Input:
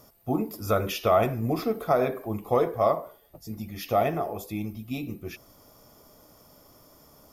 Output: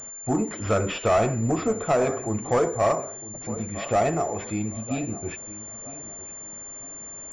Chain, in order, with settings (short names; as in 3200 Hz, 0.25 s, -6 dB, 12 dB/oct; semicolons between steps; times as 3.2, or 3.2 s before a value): darkening echo 0.958 s, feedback 31%, low-pass 2000 Hz, level -17.5 dB; soft clip -19.5 dBFS, distortion -13 dB; pulse-width modulation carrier 7200 Hz; gain +4.5 dB